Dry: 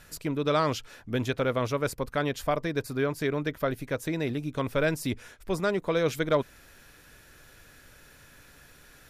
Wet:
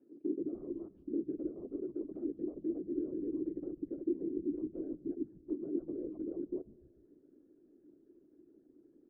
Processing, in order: chunks repeated in reverse 147 ms, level -4 dB; reverb removal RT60 0.72 s; in parallel at -1 dB: level held to a coarse grid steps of 23 dB; on the sum: peak limiter -19 dBFS, peak gain reduction 11.5 dB; compression 5:1, threshold -33 dBFS, peak gain reduction 9 dB; integer overflow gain 24.5 dB; whisper effect; Butterworth band-pass 320 Hz, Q 3.4; frequency-shifting echo 147 ms, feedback 51%, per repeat -140 Hz, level -22 dB; on a send at -21 dB: reverberation RT60 2.7 s, pre-delay 4 ms; on the sum: trim +6 dB

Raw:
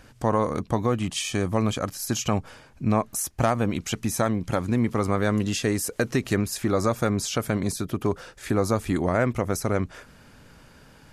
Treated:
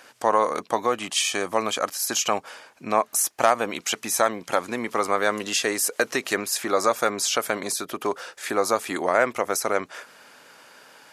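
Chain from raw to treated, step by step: high-pass 550 Hz 12 dB/octave; trim +6 dB

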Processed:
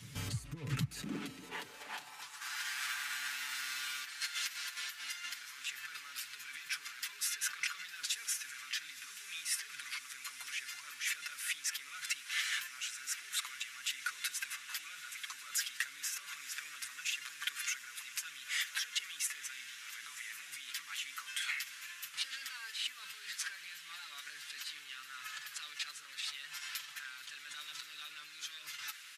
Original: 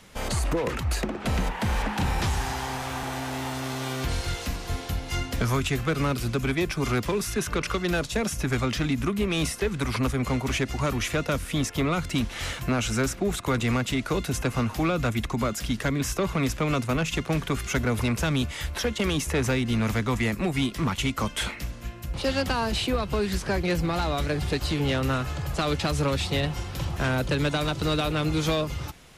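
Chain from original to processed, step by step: compressor with a negative ratio -33 dBFS, ratio -1; amplifier tone stack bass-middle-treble 6-0-2; comb 6.9 ms; echo that smears into a reverb 999 ms, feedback 78%, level -14 dB; high-pass sweep 110 Hz -> 1.6 kHz, 0.65–2.61 s; trim +8 dB

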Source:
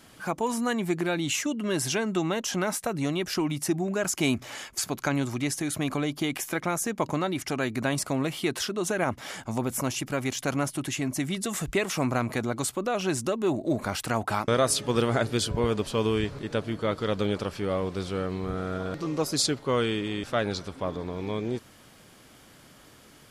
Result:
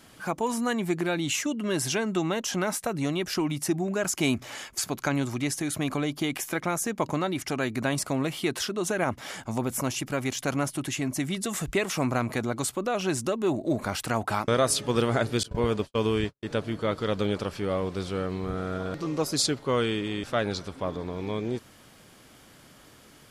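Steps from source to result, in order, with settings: 15.43–16.43 s: gate -28 dBFS, range -57 dB

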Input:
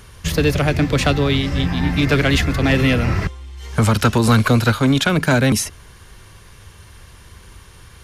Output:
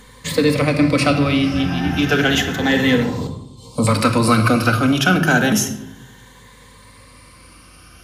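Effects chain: drifting ripple filter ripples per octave 1, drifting +0.31 Hz, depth 10 dB; high-pass 150 Hz 12 dB/octave; hum 50 Hz, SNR 30 dB; 3.03–3.87 s: Butterworth band-stop 1.8 kHz, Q 0.74; simulated room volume 2200 m³, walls furnished, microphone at 2 m; trim -1.5 dB

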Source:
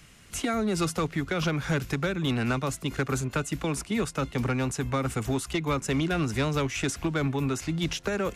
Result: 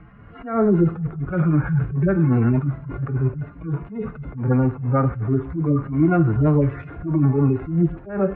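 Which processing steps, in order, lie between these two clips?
harmonic-percussive separation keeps harmonic; low-pass 1.5 kHz 24 dB/octave; on a send: thinning echo 898 ms, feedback 54%, high-pass 970 Hz, level -22 dB; on the sum: reverberation, pre-delay 3 ms, DRR 9.5 dB; in parallel at -1.5 dB: peak limiter -25.5 dBFS, peak gain reduction 8.5 dB; on the sum: attacks held to a fixed rise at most 120 dB/s; trim +7.5 dB

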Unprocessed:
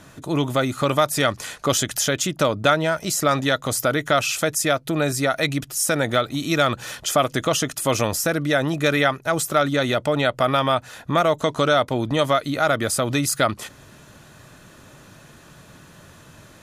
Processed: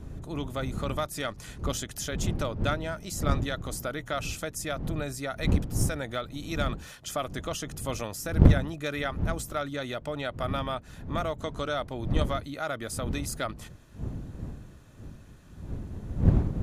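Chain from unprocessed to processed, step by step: wind noise 140 Hz -19 dBFS; Chebyshev shaper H 3 -15 dB, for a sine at 5.5 dBFS; trim -6.5 dB

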